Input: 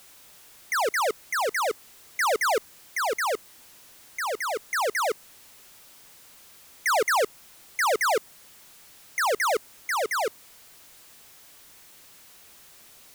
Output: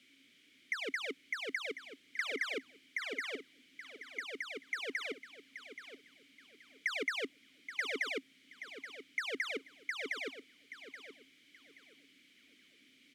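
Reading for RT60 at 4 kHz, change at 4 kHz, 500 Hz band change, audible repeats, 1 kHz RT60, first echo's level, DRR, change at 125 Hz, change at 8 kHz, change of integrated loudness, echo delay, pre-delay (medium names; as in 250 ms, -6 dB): no reverb, -8.5 dB, -16.5 dB, 2, no reverb, -11.5 dB, no reverb, no reading, -21.0 dB, -13.0 dB, 827 ms, no reverb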